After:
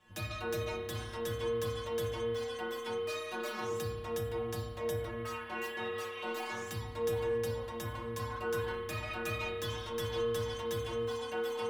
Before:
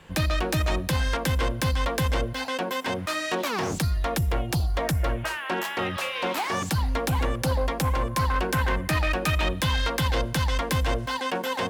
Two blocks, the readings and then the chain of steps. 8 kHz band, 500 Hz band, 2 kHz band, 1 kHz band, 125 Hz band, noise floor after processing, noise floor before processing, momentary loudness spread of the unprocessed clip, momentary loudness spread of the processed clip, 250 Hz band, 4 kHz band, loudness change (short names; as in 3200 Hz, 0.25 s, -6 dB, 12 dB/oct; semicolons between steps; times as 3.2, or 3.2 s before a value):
-12.5 dB, -4.0 dB, -12.5 dB, -13.0 dB, -15.0 dB, -43 dBFS, -33 dBFS, 3 LU, 5 LU, -13.5 dB, -12.0 dB, -10.5 dB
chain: metallic resonator 110 Hz, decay 0.61 s, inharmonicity 0.008; spring tank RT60 1.8 s, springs 30 ms, chirp 30 ms, DRR 2.5 dB